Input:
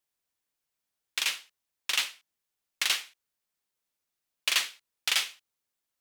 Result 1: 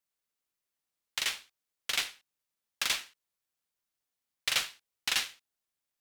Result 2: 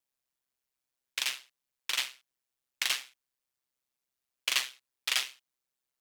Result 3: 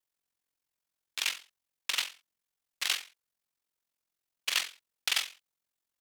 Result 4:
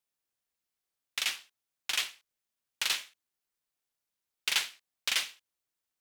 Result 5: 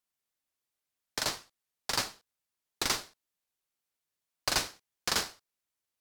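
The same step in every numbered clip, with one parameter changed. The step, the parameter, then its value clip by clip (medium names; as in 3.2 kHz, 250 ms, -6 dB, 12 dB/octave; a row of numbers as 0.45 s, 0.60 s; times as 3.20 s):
ring modulator, frequency: 530 Hz, 65 Hz, 22 Hz, 210 Hz, 1.8 kHz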